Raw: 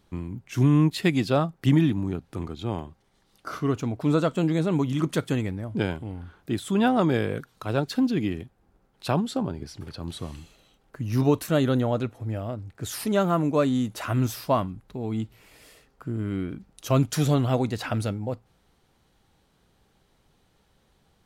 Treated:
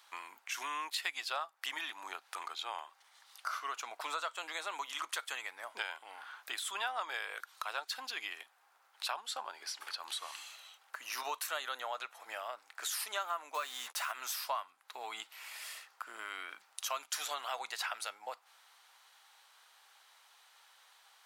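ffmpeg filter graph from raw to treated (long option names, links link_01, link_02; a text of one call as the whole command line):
ffmpeg -i in.wav -filter_complex "[0:a]asettb=1/sr,asplit=3[link_01][link_02][link_03];[link_01]atrim=end=13.544[link_04];[link_02]atrim=start=13.54:end=14.12,asetpts=PTS-STARTPTS,afade=type=in:duration=0.004:curve=qsin,afade=type=out:start_time=0.576:duration=0.004:curve=qsin,acrusher=bits=6:mix=0:aa=0.5,asplit=2[link_05][link_06];[link_06]adelay=13,volume=-11dB[link_07];[link_05][link_07]amix=inputs=2:normalize=0,atrim=end_sample=25578[link_08];[link_03]atrim=start=14.116[link_09];[link_04][link_08]acrossfade=duration=0.004:curve1=hsin:curve2=qsin[link_10];[link_10][link_09]acrossfade=duration=0.004:curve1=qsin:curve2=hsin,highpass=frequency=900:width=0.5412,highpass=frequency=900:width=1.3066,acompressor=threshold=-47dB:ratio=3,volume=8dB" out.wav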